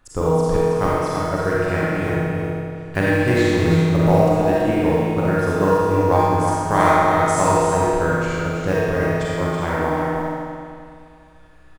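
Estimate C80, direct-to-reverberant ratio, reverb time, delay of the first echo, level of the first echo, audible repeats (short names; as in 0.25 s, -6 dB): -4.5 dB, -9.0 dB, 2.2 s, 0.327 s, -5.0 dB, 1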